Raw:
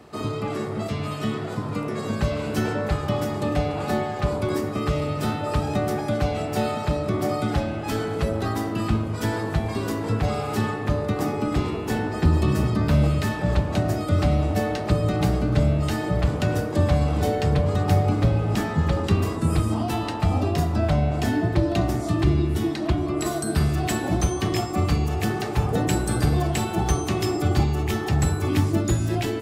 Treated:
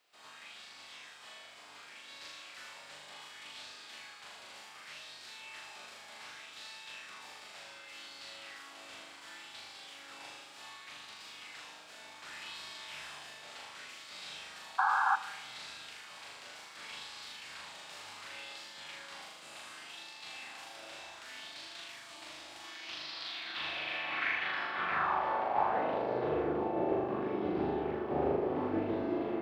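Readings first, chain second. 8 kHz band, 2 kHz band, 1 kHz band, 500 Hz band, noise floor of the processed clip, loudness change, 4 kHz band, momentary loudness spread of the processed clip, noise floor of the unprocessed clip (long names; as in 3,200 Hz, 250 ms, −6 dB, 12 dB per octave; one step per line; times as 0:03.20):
−16.0 dB, −6.0 dB, −8.0 dB, −13.0 dB, −53 dBFS, −14.5 dB, −7.5 dB, 17 LU, −30 dBFS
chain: compressing power law on the bin magnitudes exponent 0.38
soft clipping −16.5 dBFS, distortion −14 dB
flutter between parallel walls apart 6.8 metres, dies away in 1.2 s
band-pass filter sweep 7,600 Hz → 390 Hz, 0:22.57–0:26.54
background noise violet −55 dBFS
sound drawn into the spectrogram noise, 0:14.78–0:15.16, 750–1,700 Hz −26 dBFS
high-frequency loss of the air 390 metres
spring reverb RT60 1.6 s, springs 33 ms, chirp 30 ms, DRR 15.5 dB
auto-filter bell 0.67 Hz 560–4,500 Hz +6 dB
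level −1.5 dB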